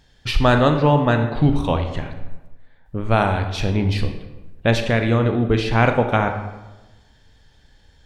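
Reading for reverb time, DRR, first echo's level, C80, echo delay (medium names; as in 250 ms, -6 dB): 1.1 s, 6.0 dB, no echo, 10.0 dB, no echo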